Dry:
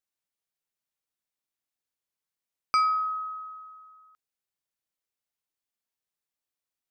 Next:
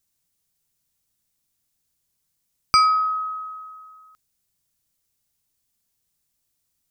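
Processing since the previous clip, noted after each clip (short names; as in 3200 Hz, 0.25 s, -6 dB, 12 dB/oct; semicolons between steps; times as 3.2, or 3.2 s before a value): tone controls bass +15 dB, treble +10 dB; gain +6.5 dB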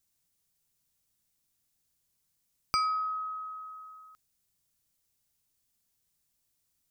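compressor 1.5:1, threshold -42 dBFS, peak gain reduction 10.5 dB; gain -2.5 dB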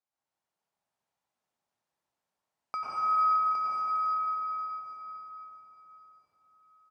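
band-pass 810 Hz, Q 1.7; echo 0.812 s -6 dB; reverb RT60 4.9 s, pre-delay 87 ms, DRR -9.5 dB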